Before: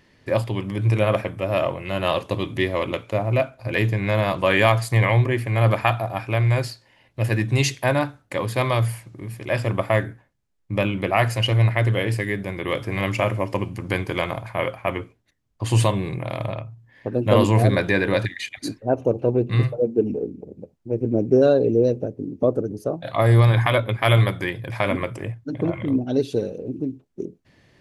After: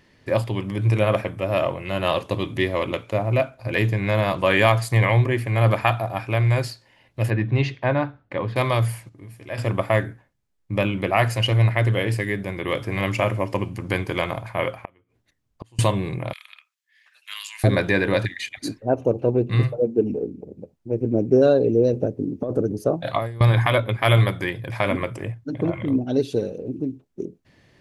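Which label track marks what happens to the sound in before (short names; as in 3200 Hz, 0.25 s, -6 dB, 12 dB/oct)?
7.300000	8.560000	air absorption 320 m
9.090000	9.580000	resonator 94 Hz, decay 0.3 s, harmonics odd, mix 70%
14.820000	15.790000	flipped gate shuts at -24 dBFS, range -32 dB
16.330000	17.640000	Bessel high-pass 2600 Hz, order 6
21.930000	23.410000	negative-ratio compressor -21 dBFS, ratio -0.5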